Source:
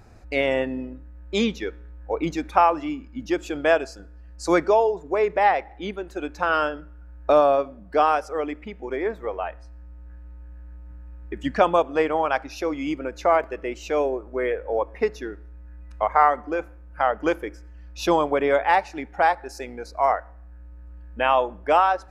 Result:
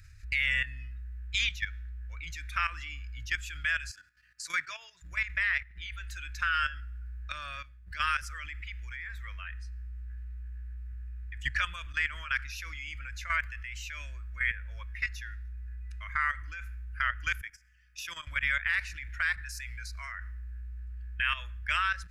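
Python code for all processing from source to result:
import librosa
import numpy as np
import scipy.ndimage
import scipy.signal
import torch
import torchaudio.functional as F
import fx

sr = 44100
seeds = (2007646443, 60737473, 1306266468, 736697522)

y = fx.chain(x, sr, fx.highpass(hz=160.0, slope=24),
    fx.high_shelf(hz=6500.0, db=-3.5), at=(3.9, 5.02))
y = fx.chain(y, sr, fx.highpass(hz=190.0, slope=12),
    fx.notch(hz=4100.0, q=5.1),
    fx.level_steps(step_db=10), at=(17.41, 18.27))
y = scipy.signal.sosfilt(scipy.signal.ellip(3, 1.0, 40, [100.0, 1700.0], 'bandstop', fs=sr, output='sos'), y)
y = fx.dynamic_eq(y, sr, hz=5000.0, q=0.96, threshold_db=-48.0, ratio=4.0, max_db=-5)
y = fx.level_steps(y, sr, step_db=12)
y = y * 10.0 ** (8.0 / 20.0)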